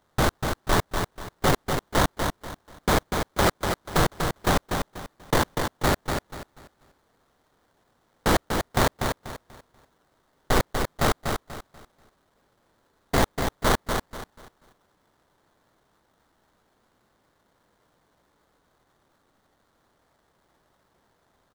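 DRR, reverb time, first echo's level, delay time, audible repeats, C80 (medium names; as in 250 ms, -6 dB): no reverb, no reverb, -5.5 dB, 243 ms, 3, no reverb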